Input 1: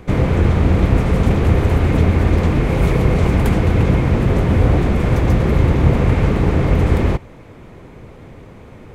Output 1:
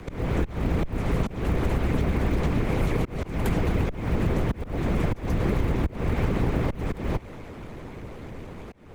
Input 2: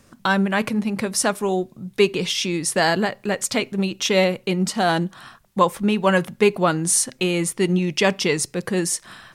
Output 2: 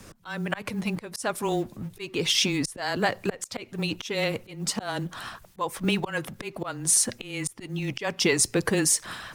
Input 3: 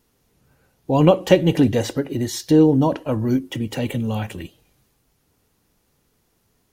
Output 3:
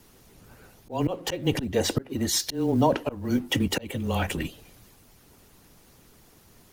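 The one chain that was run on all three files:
G.711 law mismatch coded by mu; harmonic-percussive split harmonic -9 dB; auto swell 0.386 s; frequency shift -17 Hz; compressor, threshold -21 dBFS; match loudness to -27 LUFS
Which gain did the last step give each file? +1.0, +4.0, +5.5 dB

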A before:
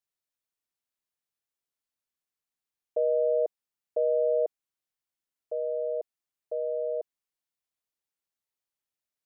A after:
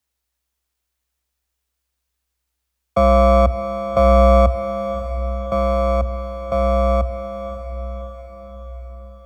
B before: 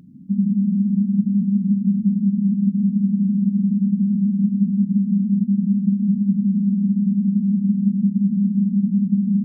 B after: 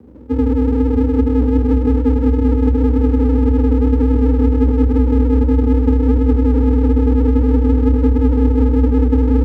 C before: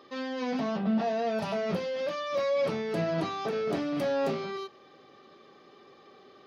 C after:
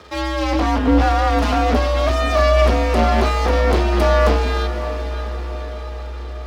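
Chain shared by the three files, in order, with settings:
half-wave rectifier; diffused feedback echo 0.577 s, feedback 56%, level -11 dB; frequency shift +62 Hz; normalise peaks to -3 dBFS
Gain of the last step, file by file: +16.0, +7.0, +16.0 dB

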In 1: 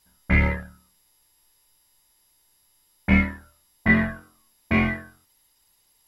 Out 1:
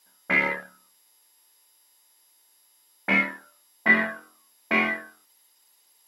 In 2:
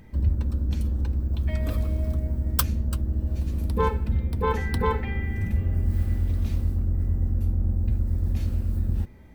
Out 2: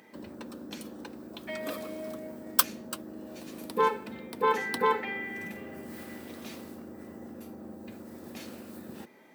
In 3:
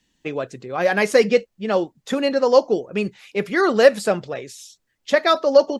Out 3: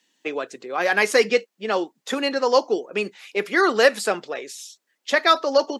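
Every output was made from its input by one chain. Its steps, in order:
Bessel high-pass 380 Hz, order 4; dynamic EQ 580 Hz, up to -7 dB, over -33 dBFS, Q 2.5; gain +2.5 dB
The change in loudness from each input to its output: -0.5, -6.0, -2.0 LU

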